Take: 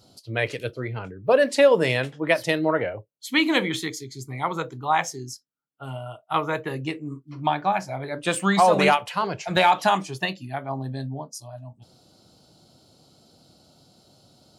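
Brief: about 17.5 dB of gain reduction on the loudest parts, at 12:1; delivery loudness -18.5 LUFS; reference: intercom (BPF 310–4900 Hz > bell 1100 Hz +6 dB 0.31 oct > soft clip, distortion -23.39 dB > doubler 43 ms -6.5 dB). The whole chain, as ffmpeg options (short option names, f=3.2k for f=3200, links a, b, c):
-filter_complex "[0:a]acompressor=threshold=-30dB:ratio=12,highpass=310,lowpass=4.9k,equalizer=f=1.1k:t=o:w=0.31:g=6,asoftclip=threshold=-20.5dB,asplit=2[a][b];[b]adelay=43,volume=-6.5dB[c];[a][c]amix=inputs=2:normalize=0,volume=18dB"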